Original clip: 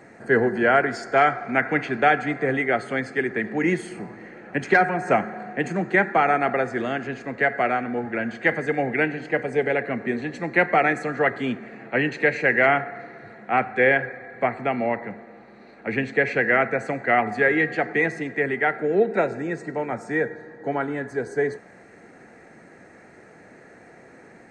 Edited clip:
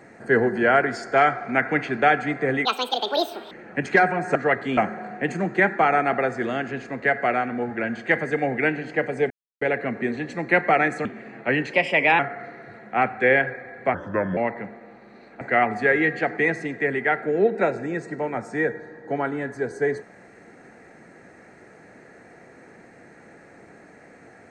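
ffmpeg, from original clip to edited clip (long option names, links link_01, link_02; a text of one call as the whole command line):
ffmpeg -i in.wav -filter_complex "[0:a]asplit=12[link_01][link_02][link_03][link_04][link_05][link_06][link_07][link_08][link_09][link_10][link_11][link_12];[link_01]atrim=end=2.654[link_13];[link_02]atrim=start=2.65:end=4.29,asetpts=PTS-STARTPTS,asetrate=83790,aresample=44100,atrim=end_sample=38065,asetpts=PTS-STARTPTS[link_14];[link_03]atrim=start=4.286:end=5.132[link_15];[link_04]atrim=start=11.098:end=11.522[link_16];[link_05]atrim=start=5.128:end=9.66,asetpts=PTS-STARTPTS,afade=type=out:start_time=4.528:duration=0.004:curve=hsin,apad=pad_dur=0.31[link_17];[link_06]atrim=start=9.66:end=11.102,asetpts=PTS-STARTPTS,afade=type=in:duration=0.004:curve=hsin[link_18];[link_07]atrim=start=11.518:end=12.204[link_19];[link_08]atrim=start=12.2:end=12.75,asetpts=PTS-STARTPTS,asetrate=52920,aresample=44100,atrim=end_sample=20212,asetpts=PTS-STARTPTS[link_20];[link_09]atrim=start=12.746:end=14.504[link_21];[link_10]atrim=start=14.5:end=14.83,asetpts=PTS-STARTPTS,asetrate=33957,aresample=44100[link_22];[link_11]atrim=start=14.826:end=15.872[link_23];[link_12]atrim=start=16.968[link_24];[link_13][link_14]acrossfade=duration=0.004:curve1=hsin:curve2=hsin[link_25];[link_25][link_15]acrossfade=duration=0.004:curve1=hsin:curve2=hsin[link_26];[link_26][link_16]acrossfade=duration=0.004:curve1=hsin:curve2=hsin[link_27];[link_17][link_18]concat=n=2:v=0:a=1[link_28];[link_27][link_28]acrossfade=duration=0.004:curve1=hsin:curve2=hsin[link_29];[link_29][link_19]acrossfade=duration=0.004:curve1=hsin:curve2=hsin[link_30];[link_30][link_20]acrossfade=duration=0.004:curve1=hsin:curve2=hsin[link_31];[link_31][link_21]acrossfade=duration=0.004:curve1=hsin:curve2=hsin[link_32];[link_32][link_22]acrossfade=duration=0.004:curve1=hsin:curve2=hsin[link_33];[link_33][link_23]acrossfade=duration=0.004:curve1=hsin:curve2=hsin[link_34];[link_34][link_24]acrossfade=duration=0.004:curve1=hsin:curve2=hsin" out.wav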